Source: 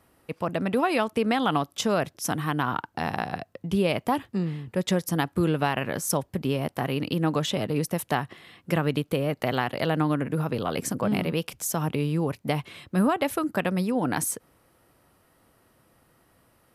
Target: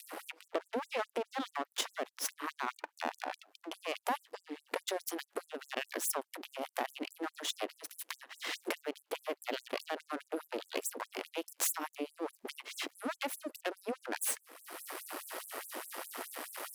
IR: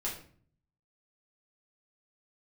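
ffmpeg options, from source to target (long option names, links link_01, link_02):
-af "alimiter=limit=-16dB:level=0:latency=1:release=115,acompressor=mode=upward:threshold=-30dB:ratio=2.5,asetnsamples=nb_out_samples=441:pad=0,asendcmd='3.74 highshelf g -2.5',highshelf=frequency=2500:gain=-10.5,aeval=exprs='max(val(0),0)':channel_layout=same,adynamicequalizer=threshold=0.00708:dfrequency=160:dqfactor=0.79:tfrequency=160:tqfactor=0.79:attack=5:release=100:ratio=0.375:range=2:mode=boostabove:tftype=bell,acompressor=threshold=-36dB:ratio=12,afftfilt=real='re*gte(b*sr/1024,240*pow(7500/240,0.5+0.5*sin(2*PI*4.8*pts/sr)))':imag='im*gte(b*sr/1024,240*pow(7500/240,0.5+0.5*sin(2*PI*4.8*pts/sr)))':win_size=1024:overlap=0.75,volume=11dB"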